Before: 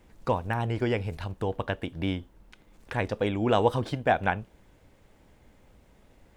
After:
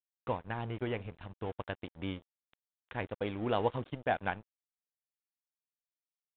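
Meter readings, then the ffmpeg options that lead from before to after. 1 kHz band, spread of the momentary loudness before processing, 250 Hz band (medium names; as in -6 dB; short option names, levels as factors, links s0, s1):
-8.0 dB, 9 LU, -9.0 dB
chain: -af "aeval=exprs='sgn(val(0))*max(abs(val(0))-0.0126,0)':c=same,volume=0.447" -ar 8000 -c:a pcm_mulaw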